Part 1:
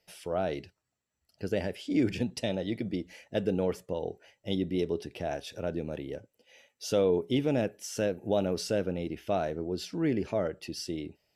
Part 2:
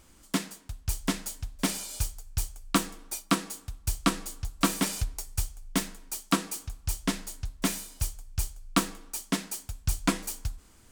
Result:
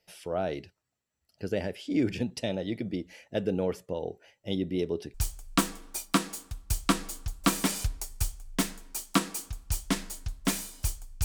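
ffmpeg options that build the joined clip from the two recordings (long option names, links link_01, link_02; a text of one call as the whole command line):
ffmpeg -i cue0.wav -i cue1.wav -filter_complex "[0:a]apad=whole_dur=11.24,atrim=end=11.24,atrim=end=5.142[link_01];[1:a]atrim=start=2.308:end=8.41[link_02];[link_01][link_02]acrossfade=duration=0.004:curve1=hsin:curve2=hsin" out.wav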